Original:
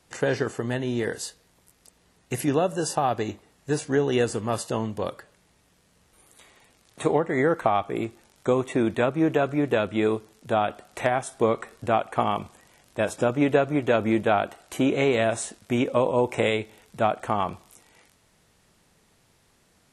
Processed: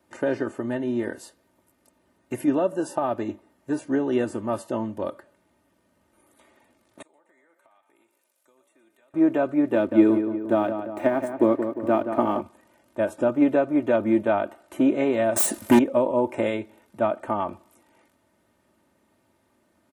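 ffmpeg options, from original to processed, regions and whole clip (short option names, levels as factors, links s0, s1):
-filter_complex "[0:a]asettb=1/sr,asplit=3[s0][s1][s2];[s0]atrim=end=7.024[s3];[s1]atrim=start=7.02:end=9.14,asetpts=PTS-STARTPTS,afade=t=in:d=0.004:c=qsin,afade=t=out:st=2.116:d=0.004:c=qsin,aderivative,acompressor=threshold=0.00126:ratio=5:attack=3.2:release=140:knee=1:detection=peak,asplit=8[s4][s5][s6][s7][s8][s9][s10][s11];[s5]adelay=118,afreqshift=66,volume=0.299[s12];[s6]adelay=236,afreqshift=132,volume=0.182[s13];[s7]adelay=354,afreqshift=198,volume=0.111[s14];[s8]adelay=472,afreqshift=264,volume=0.0676[s15];[s9]adelay=590,afreqshift=330,volume=0.0412[s16];[s10]adelay=708,afreqshift=396,volume=0.0251[s17];[s11]adelay=826,afreqshift=462,volume=0.0153[s18];[s4][s12][s13][s14][s15][s16][s17][s18]amix=inputs=8:normalize=0,atrim=end_sample=93492[s19];[s2]atrim=start=9.136[s20];[s3][s19]acrossfade=d=0.004:c1=hsin:c2=qsin[s21];[s21][s20]acrossfade=d=0.004:c1=qsin:c2=hsin,asettb=1/sr,asplit=3[s22][s23][s24];[s22]atrim=end=9.744[s25];[s23]atrim=start=9.74:end=12.41,asetpts=PTS-STARTPTS,afade=t=in:d=0.004:c=qsin,afade=t=out:st=2.666:d=0.004:c=qsin,equalizer=f=300:t=o:w=0.68:g=9,aeval=exprs='sgn(val(0))*max(abs(val(0))-0.00668,0)':c=same,asplit=2[s26][s27];[s27]adelay=176,lowpass=f=2400:p=1,volume=0.398,asplit=2[s28][s29];[s29]adelay=176,lowpass=f=2400:p=1,volume=0.55,asplit=2[s30][s31];[s31]adelay=176,lowpass=f=2400:p=1,volume=0.55,asplit=2[s32][s33];[s33]adelay=176,lowpass=f=2400:p=1,volume=0.55,asplit=2[s34][s35];[s35]adelay=176,lowpass=f=2400:p=1,volume=0.55,asplit=2[s36][s37];[s37]adelay=176,lowpass=f=2400:p=1,volume=0.55,asplit=2[s38][s39];[s39]adelay=176,lowpass=f=2400:p=1,volume=0.55[s40];[s26][s28][s30][s32][s34][s36][s38][s40]amix=inputs=8:normalize=0,atrim=end_sample=117747[s41];[s24]atrim=start=12.406[s42];[s25][s41]acrossfade=d=0.004:c1=hsin:c2=qsin[s43];[s43][s42]acrossfade=d=0.004:c1=qsin:c2=hsin,asettb=1/sr,asplit=3[s44][s45][s46];[s44]atrim=end=15.364[s47];[s45]atrim=start=15.36:end=15.79,asetpts=PTS-STARTPTS,afade=t=in:d=0.004:c=qsin,afade=t=out:st=0.426:d=0.004:c=qsin,aemphasis=mode=production:type=50fm,aeval=exprs='0.282*sin(PI/2*3.55*val(0)/0.282)':c=same[s48];[s46]atrim=start=15.786[s49];[s47][s48]acrossfade=d=0.004:c1=hsin:c2=qsin[s50];[s50][s49]acrossfade=d=0.004:c1=qsin:c2=hsin,highpass=120,equalizer=f=5600:w=0.38:g=-14.5,aecho=1:1:3.3:0.68"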